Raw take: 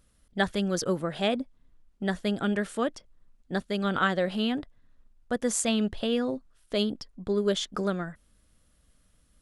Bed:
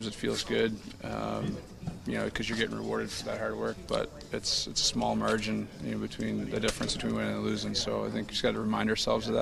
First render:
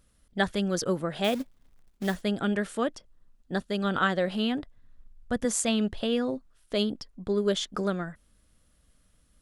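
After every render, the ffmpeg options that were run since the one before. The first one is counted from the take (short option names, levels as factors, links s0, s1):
-filter_complex "[0:a]asettb=1/sr,asplit=3[s0][s1][s2];[s0]atrim=end=1.244[s3];[s1]atrim=start=1.24:end=2.22,asetpts=PTS-STARTPTS,afade=t=in:d=0.004:c=qsin,afade=t=out:st=0.976:d=0.004:c=qsin,acrusher=bits=4:mode=log:mix=0:aa=0.000001[s4];[s2]atrim=start=2.216[s5];[s3][s4]acrossfade=d=0.004:c1=hsin:c2=qsin[s6];[s6][s5]acrossfade=d=0.004:c1=qsin:c2=hsin,asettb=1/sr,asplit=3[s7][s8][s9];[s7]atrim=end=2.934[s10];[s8]atrim=start=2.93:end=4.08,asetpts=PTS-STARTPTS,afade=t=in:d=0.004:c=qsin,afade=t=out:st=1.146:d=0.004:c=qsin,bandreject=f=2200:w=12[s11];[s9]atrim=start=4.076[s12];[s10][s11]acrossfade=d=0.004:c1=hsin:c2=qsin[s13];[s13][s12]acrossfade=d=0.004:c1=qsin:c2=hsin,asettb=1/sr,asplit=3[s14][s15][s16];[s14]atrim=end=4.604[s17];[s15]atrim=start=4.6:end=5.45,asetpts=PTS-STARTPTS,afade=t=in:d=0.004:c=qsin,afade=t=out:st=0.846:d=0.004:c=qsin,asubboost=boost=9:cutoff=200[s18];[s16]atrim=start=5.446[s19];[s17][s18]acrossfade=d=0.004:c1=hsin:c2=qsin[s20];[s20][s19]acrossfade=d=0.004:c1=qsin:c2=hsin"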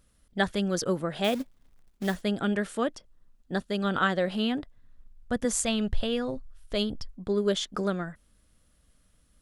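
-filter_complex "[0:a]asplit=3[s0][s1][s2];[s0]afade=t=out:st=5.51:d=0.02[s3];[s1]asubboost=boost=6:cutoff=99,afade=t=in:st=5.51:d=0.02,afade=t=out:st=7.13:d=0.02[s4];[s2]afade=t=in:st=7.13:d=0.02[s5];[s3][s4][s5]amix=inputs=3:normalize=0"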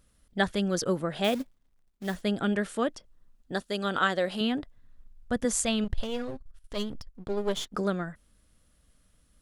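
-filter_complex "[0:a]asettb=1/sr,asplit=3[s0][s1][s2];[s0]atrim=end=3.524[s3];[s1]atrim=start=3.52:end=4.41,asetpts=PTS-STARTPTS,afade=t=in:d=0.004:c=qsin,afade=t=out:st=0.886:d=0.004:c=qsin,bass=f=250:g=-7,treble=f=4000:g=5[s4];[s2]atrim=start=4.406[s5];[s3][s4]acrossfade=d=0.004:c1=hsin:c2=qsin[s6];[s6][s5]acrossfade=d=0.004:c1=qsin:c2=hsin,asettb=1/sr,asplit=3[s7][s8][s9];[s7]atrim=end=5.844[s10];[s8]atrim=start=5.84:end=7.73,asetpts=PTS-STARTPTS,afade=t=in:d=0.004:c=qsin,afade=t=out:st=1.886:d=0.004:c=qsin,aeval=exprs='if(lt(val(0),0),0.251*val(0),val(0))':c=same[s11];[s9]atrim=start=7.726[s12];[s10][s11]acrossfade=d=0.004:c1=hsin:c2=qsin[s13];[s13][s12]acrossfade=d=0.004:c1=qsin:c2=hsin,asplit=3[s14][s15][s16];[s14]atrim=end=1.6,asetpts=PTS-STARTPTS,afade=t=out:st=1.32:d=0.28:c=qsin:silence=0.334965[s17];[s15]atrim=start=1.6:end=2,asetpts=PTS-STARTPTS,volume=0.335[s18];[s16]atrim=start=2,asetpts=PTS-STARTPTS,afade=t=in:d=0.28:c=qsin:silence=0.334965[s19];[s17][s18][s19]concat=n=3:v=0:a=1"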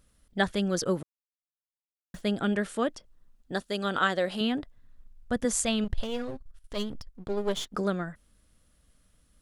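-filter_complex "[0:a]asplit=3[s0][s1][s2];[s0]atrim=end=1.03,asetpts=PTS-STARTPTS,afade=t=out:st=1.026:d=0.004:c=hsin[s3];[s1]atrim=start=1.03:end=2.14,asetpts=PTS-STARTPTS,volume=0[s4];[s2]atrim=start=2.14,asetpts=PTS-STARTPTS,afade=t=in:d=0.004:c=hsin[s5];[s3][s4][s5]concat=n=3:v=0:a=1"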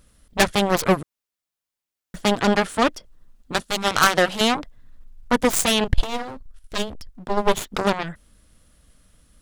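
-af "aeval=exprs='0.316*sin(PI/2*2.51*val(0)/0.316)':c=same,aeval=exprs='0.316*(cos(1*acos(clip(val(0)/0.316,-1,1)))-cos(1*PI/2))+0.158*(cos(3*acos(clip(val(0)/0.316,-1,1)))-cos(3*PI/2))+0.02*(cos(6*acos(clip(val(0)/0.316,-1,1)))-cos(6*PI/2))+0.00794*(cos(7*acos(clip(val(0)/0.316,-1,1)))-cos(7*PI/2))':c=same"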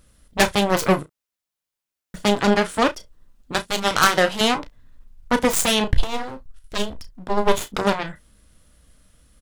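-filter_complex "[0:a]asplit=2[s0][s1];[s1]adelay=34,volume=0.237[s2];[s0][s2]amix=inputs=2:normalize=0,aecho=1:1:15|32:0.158|0.2"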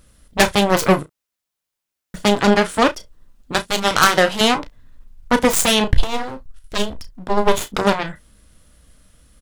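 -af "volume=1.5,alimiter=limit=0.794:level=0:latency=1"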